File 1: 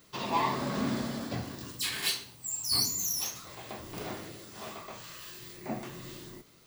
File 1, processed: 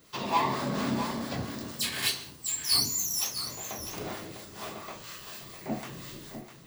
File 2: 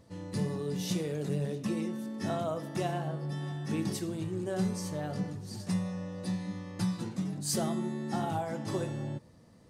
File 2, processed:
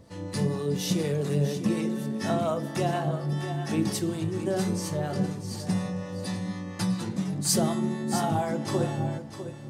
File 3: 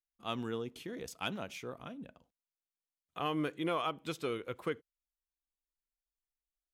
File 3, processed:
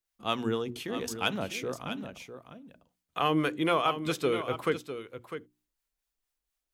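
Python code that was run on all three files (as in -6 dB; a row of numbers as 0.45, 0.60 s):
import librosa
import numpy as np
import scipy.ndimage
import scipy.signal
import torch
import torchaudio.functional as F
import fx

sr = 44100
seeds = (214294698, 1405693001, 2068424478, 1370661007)

y = fx.hum_notches(x, sr, base_hz=60, count=6)
y = fx.harmonic_tremolo(y, sr, hz=4.2, depth_pct=50, crossover_hz=630.0)
y = y + 10.0 ** (-10.5 / 20.0) * np.pad(y, (int(652 * sr / 1000.0), 0))[:len(y)]
y = librosa.util.normalize(y) * 10.0 ** (-12 / 20.0)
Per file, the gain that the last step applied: +4.0, +8.5, +10.5 dB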